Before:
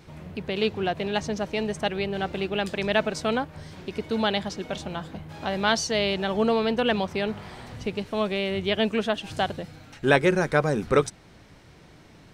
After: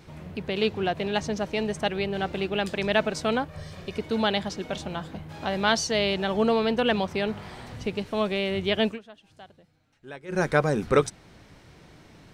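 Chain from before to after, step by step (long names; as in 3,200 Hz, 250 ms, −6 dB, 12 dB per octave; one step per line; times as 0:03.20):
0:03.48–0:03.97: comb filter 1.7 ms, depth 60%
0:08.87–0:10.40: duck −22 dB, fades 0.12 s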